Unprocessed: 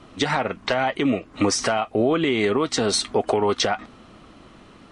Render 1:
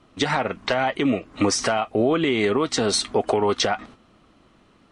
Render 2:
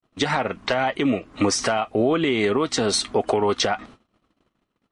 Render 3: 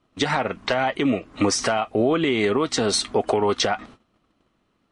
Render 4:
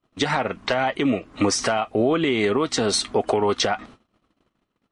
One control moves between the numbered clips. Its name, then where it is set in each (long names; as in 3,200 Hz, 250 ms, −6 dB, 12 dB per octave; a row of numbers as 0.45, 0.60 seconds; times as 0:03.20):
noise gate, range: −9, −54, −21, −34 decibels